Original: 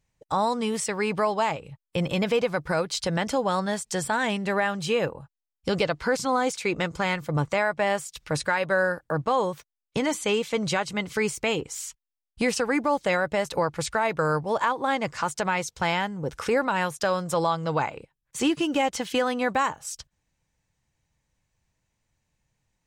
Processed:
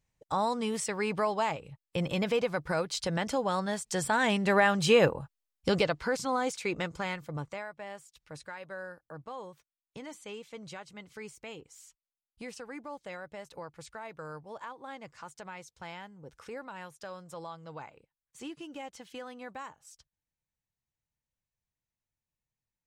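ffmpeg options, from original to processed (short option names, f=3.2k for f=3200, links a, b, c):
-af "volume=3.5dB,afade=t=in:st=3.8:d=1.28:silence=0.375837,afade=t=out:st=5.08:d=0.99:silence=0.334965,afade=t=out:st=6.74:d=0.98:silence=0.237137"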